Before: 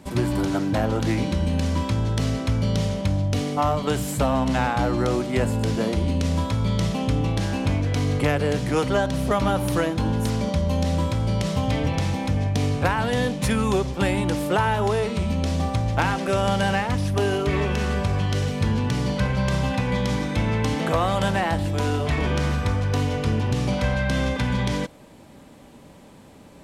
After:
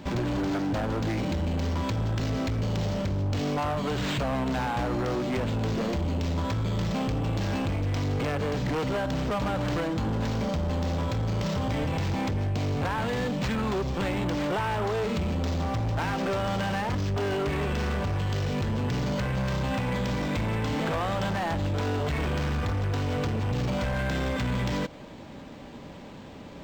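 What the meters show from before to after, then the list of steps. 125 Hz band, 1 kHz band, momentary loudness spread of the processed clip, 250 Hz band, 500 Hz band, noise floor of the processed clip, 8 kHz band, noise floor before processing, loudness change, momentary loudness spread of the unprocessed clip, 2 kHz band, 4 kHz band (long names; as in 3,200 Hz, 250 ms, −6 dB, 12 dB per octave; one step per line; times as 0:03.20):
−5.0 dB, −5.0 dB, 1 LU, −5.0 dB, −5.5 dB, −43 dBFS, −8.5 dB, −47 dBFS, −5.0 dB, 2 LU, −5.0 dB, −5.0 dB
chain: high-shelf EQ 7,100 Hz +6.5 dB
downward compressor, threshold −25 dBFS, peak gain reduction 9 dB
gain into a clipping stage and back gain 29 dB
linearly interpolated sample-rate reduction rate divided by 4×
level +4 dB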